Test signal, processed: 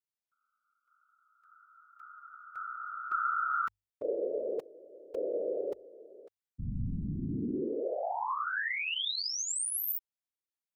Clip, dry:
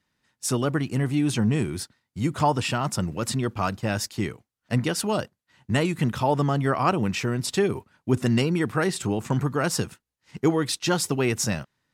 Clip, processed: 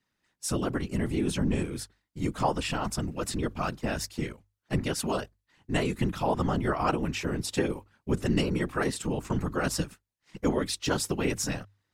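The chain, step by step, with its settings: whisper effect; hum notches 50/100 Hz; trim -4.5 dB

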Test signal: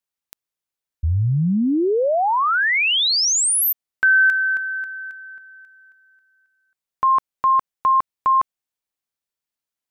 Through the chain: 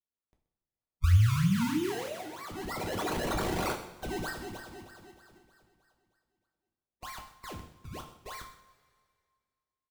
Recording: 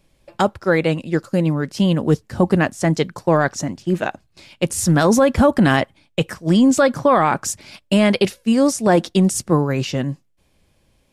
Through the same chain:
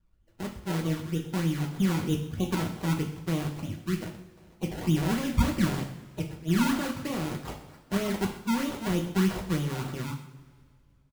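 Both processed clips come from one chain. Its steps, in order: coarse spectral quantiser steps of 30 dB; amplifier tone stack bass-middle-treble 10-0-1; level rider gain up to 6 dB; decimation with a swept rate 26×, swing 100% 3.2 Hz; delay 128 ms -17 dB; two-slope reverb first 0.46 s, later 2 s, from -17 dB, DRR 1 dB

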